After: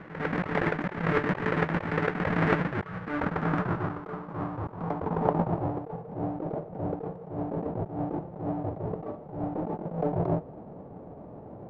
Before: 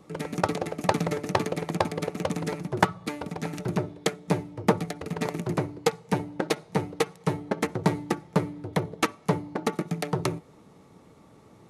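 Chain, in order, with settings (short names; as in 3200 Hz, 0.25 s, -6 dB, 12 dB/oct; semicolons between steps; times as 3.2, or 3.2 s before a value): half-waves squared off; negative-ratio compressor -25 dBFS, ratio -0.5; low-pass sweep 1800 Hz -> 680 Hz, 2.7–6.16; attack slew limiter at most 100 dB/s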